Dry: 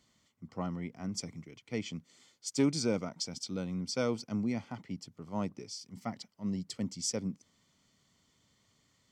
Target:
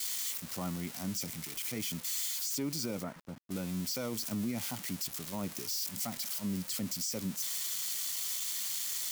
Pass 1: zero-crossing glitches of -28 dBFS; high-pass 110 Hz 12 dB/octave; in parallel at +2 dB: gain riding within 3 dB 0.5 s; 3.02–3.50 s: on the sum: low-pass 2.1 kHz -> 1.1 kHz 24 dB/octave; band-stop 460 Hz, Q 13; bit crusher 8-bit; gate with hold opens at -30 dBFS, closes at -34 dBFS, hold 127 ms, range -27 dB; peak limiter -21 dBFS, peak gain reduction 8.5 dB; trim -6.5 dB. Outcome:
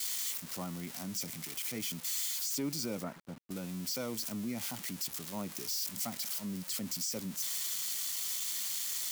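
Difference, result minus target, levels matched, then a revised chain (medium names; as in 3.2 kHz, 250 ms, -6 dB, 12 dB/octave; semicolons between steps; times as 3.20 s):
125 Hz band -3.0 dB
zero-crossing glitches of -28 dBFS; in parallel at +2 dB: gain riding within 3 dB 0.5 s; 3.02–3.50 s: on the sum: low-pass 2.1 kHz -> 1.1 kHz 24 dB/octave; band-stop 460 Hz, Q 13; bit crusher 8-bit; gate with hold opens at -30 dBFS, closes at -34 dBFS, hold 127 ms, range -27 dB; peak limiter -21 dBFS, peak gain reduction 8.5 dB; trim -6.5 dB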